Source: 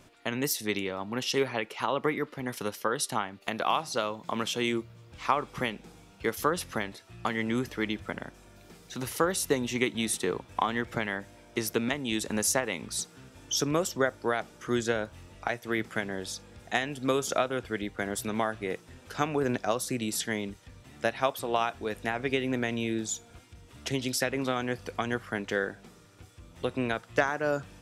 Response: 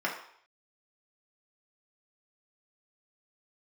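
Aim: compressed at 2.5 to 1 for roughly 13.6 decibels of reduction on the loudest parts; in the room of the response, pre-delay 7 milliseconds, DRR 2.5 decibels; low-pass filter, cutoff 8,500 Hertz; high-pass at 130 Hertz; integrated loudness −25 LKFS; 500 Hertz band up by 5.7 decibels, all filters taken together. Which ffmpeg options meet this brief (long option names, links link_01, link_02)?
-filter_complex "[0:a]highpass=130,lowpass=8500,equalizer=frequency=500:width_type=o:gain=7,acompressor=threshold=-38dB:ratio=2.5,asplit=2[link_01][link_02];[1:a]atrim=start_sample=2205,adelay=7[link_03];[link_02][link_03]afir=irnorm=-1:irlink=0,volume=-11.5dB[link_04];[link_01][link_04]amix=inputs=2:normalize=0,volume=12.5dB"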